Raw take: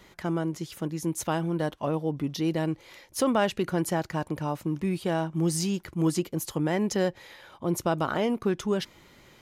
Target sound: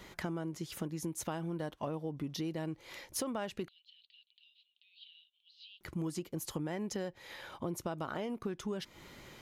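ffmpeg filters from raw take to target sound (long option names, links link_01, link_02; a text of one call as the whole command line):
ffmpeg -i in.wav -filter_complex "[0:a]acompressor=threshold=-37dB:ratio=6,asettb=1/sr,asplit=3[link_01][link_02][link_03];[link_01]atrim=end=3.684[link_04];[link_02]atrim=start=3.68:end=5.81,asetpts=PTS-STARTPTS,afade=type=in:duration=0.004:curve=qsin,afade=type=out:start_time=2.126:duration=0.004:curve=qsin,asuperpass=centerf=3400:order=8:qfactor=2.3[link_05];[link_03]atrim=start=5.806[link_06];[link_04][link_05]acrossfade=duration=0.004:curve1=hsin:curve2=qsin[link_07];[link_07][link_06]acrossfade=duration=0.004:curve1=qsin:curve2=hsin,volume=1.5dB" out.wav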